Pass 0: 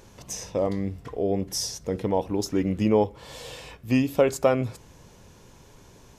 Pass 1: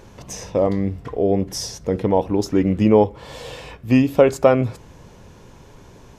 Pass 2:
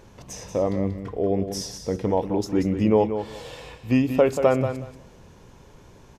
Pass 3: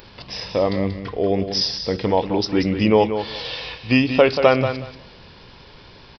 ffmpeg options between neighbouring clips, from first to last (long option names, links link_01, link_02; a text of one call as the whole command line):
ffmpeg -i in.wav -af "highshelf=frequency=3900:gain=-9,volume=7dB" out.wav
ffmpeg -i in.wav -af "aecho=1:1:184|368|552:0.355|0.0639|0.0115,volume=-5dB" out.wav
ffmpeg -i in.wav -af "aresample=11025,aresample=44100,crystalizer=i=9:c=0,volume=2dB" out.wav